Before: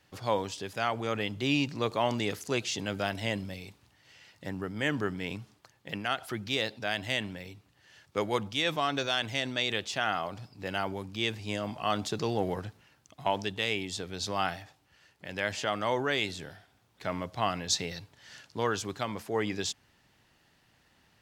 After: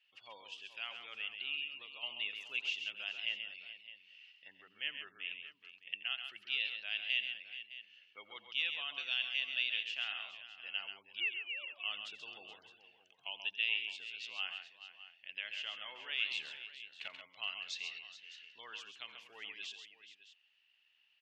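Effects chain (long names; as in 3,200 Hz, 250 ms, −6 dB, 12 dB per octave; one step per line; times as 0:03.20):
0:11.20–0:11.83: three sine waves on the formant tracks
gate on every frequency bin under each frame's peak −25 dB strong
0:01.20–0:02.03: downward compressor, threshold −30 dBFS, peak gain reduction 7.5 dB
0:16.31–0:17.08: leveller curve on the samples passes 3
resonant band-pass 2,800 Hz, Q 8.6
multi-tap delay 86/134/425/612 ms −16.5/−7.5/−13.5/−15.5 dB
level +3.5 dB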